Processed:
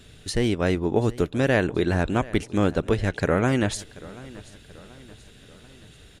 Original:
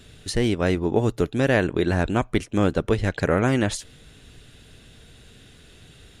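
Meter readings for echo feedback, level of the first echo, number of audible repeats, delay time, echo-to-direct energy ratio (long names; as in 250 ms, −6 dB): 49%, −20.0 dB, 3, 733 ms, −19.0 dB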